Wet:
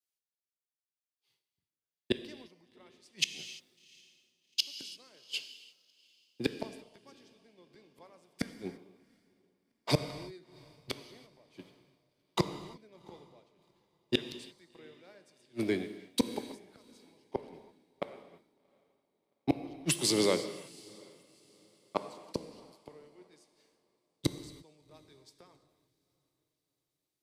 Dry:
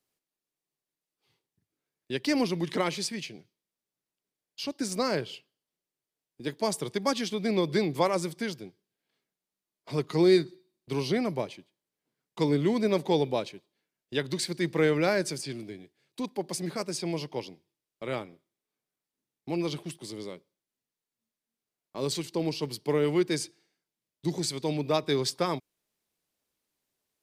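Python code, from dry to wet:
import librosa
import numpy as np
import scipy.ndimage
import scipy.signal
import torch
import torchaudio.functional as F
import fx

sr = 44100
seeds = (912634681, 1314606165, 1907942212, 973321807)

y = fx.low_shelf(x, sr, hz=220.0, db=-9.5)
y = fx.gate_flip(y, sr, shuts_db=-28.0, range_db=-34)
y = fx.echo_diffused(y, sr, ms=747, feedback_pct=53, wet_db=-15.0)
y = fx.rev_gated(y, sr, seeds[0], gate_ms=370, shape='flat', drr_db=8.5)
y = fx.band_widen(y, sr, depth_pct=70)
y = F.gain(torch.from_numpy(y), 8.5).numpy()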